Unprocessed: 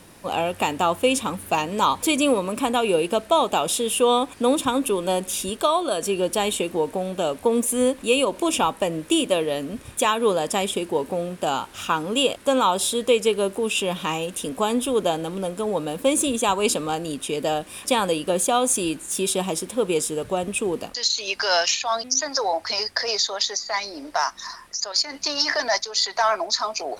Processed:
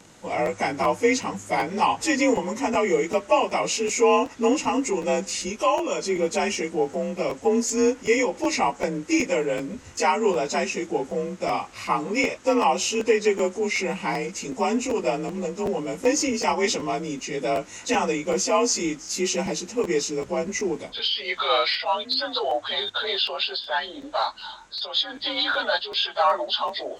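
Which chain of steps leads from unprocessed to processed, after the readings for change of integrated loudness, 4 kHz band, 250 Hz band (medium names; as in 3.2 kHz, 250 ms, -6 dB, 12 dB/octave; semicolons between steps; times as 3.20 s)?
-1.5 dB, -2.0 dB, -1.0 dB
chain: frequency axis rescaled in octaves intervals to 90%; dynamic bell 1.3 kHz, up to +3 dB, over -34 dBFS, Q 1; crackling interface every 0.38 s, samples 512, repeat, from 0.45 s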